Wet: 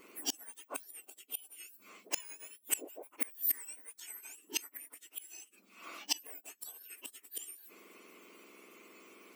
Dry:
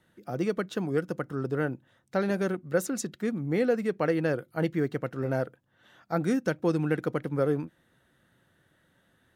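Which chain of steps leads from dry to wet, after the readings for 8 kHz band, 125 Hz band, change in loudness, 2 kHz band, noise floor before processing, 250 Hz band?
+5.0 dB, below −40 dB, −10.0 dB, −12.5 dB, −68 dBFS, −26.5 dB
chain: frequency axis turned over on the octave scale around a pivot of 2,000 Hz
gate with flip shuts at −30 dBFS, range −29 dB
level +13.5 dB

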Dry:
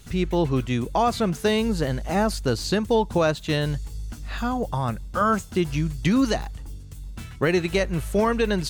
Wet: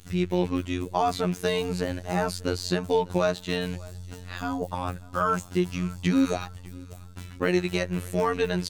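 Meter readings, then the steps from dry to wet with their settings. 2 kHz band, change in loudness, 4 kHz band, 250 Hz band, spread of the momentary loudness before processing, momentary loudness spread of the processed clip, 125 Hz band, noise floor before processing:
−3.5 dB, −3.5 dB, −3.5 dB, −3.5 dB, 14 LU, 15 LU, −4.5 dB, −40 dBFS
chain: loose part that buzzes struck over −24 dBFS, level −33 dBFS
healed spectral selection 0:06.18–0:06.43, 900–6,200 Hz before
on a send: repeating echo 595 ms, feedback 39%, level −23 dB
on the sum: phases set to zero 89.6 Hz
level −1 dB

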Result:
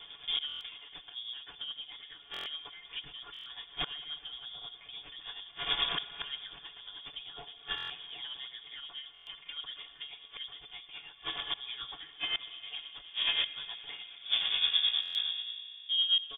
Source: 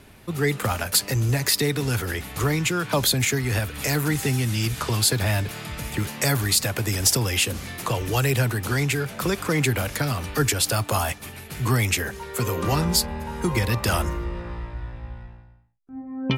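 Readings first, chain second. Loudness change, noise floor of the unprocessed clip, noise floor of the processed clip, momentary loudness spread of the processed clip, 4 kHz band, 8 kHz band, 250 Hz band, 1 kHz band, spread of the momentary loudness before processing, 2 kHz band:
−11.5 dB, −44 dBFS, −55 dBFS, 16 LU, −2.0 dB, below −40 dB, −33.0 dB, −18.0 dB, 12 LU, −14.5 dB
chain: lower of the sound and its delayed copy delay 2.9 ms
parametric band 190 Hz +15 dB 0.73 octaves
comb filter 7.2 ms, depth 78%
dynamic equaliser 560 Hz, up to +3 dB, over −32 dBFS, Q 1.1
automatic gain control gain up to 4 dB
gate with flip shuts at −16 dBFS, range −25 dB
shaped tremolo triangle 9.5 Hz, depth 65%
spring reverb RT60 3.4 s, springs 60 ms, chirp 60 ms, DRR 13.5 dB
voice inversion scrambler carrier 3,500 Hz
buffer that repeats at 0:00.47/0:02.32/0:03.32/0:07.76/0:09.13/0:15.01, samples 1,024, times 5

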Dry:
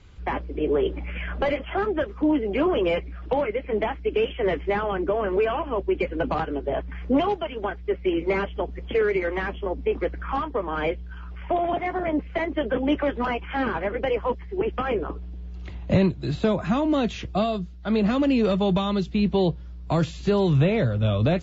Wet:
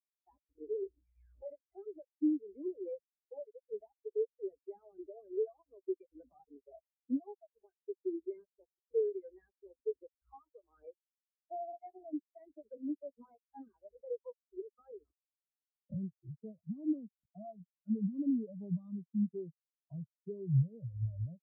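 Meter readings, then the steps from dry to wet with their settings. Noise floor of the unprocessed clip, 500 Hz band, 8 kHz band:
−38 dBFS, −17.5 dB, can't be measured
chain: bit reduction 5 bits
downward compressor 4 to 1, threshold −23 dBFS, peak gain reduction 8 dB
every bin expanded away from the loudest bin 4 to 1
level −8 dB

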